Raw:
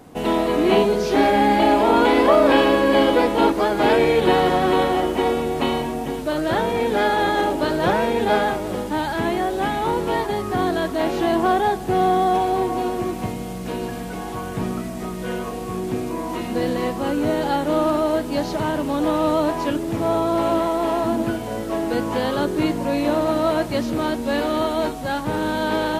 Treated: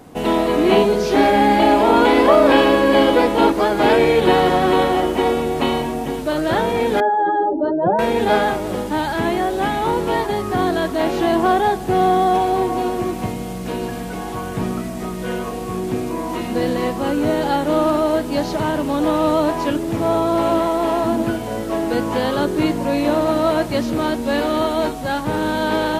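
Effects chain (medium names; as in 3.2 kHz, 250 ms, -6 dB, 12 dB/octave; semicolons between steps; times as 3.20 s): 7.00–7.99 s: spectral contrast enhancement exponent 2.5; trim +2.5 dB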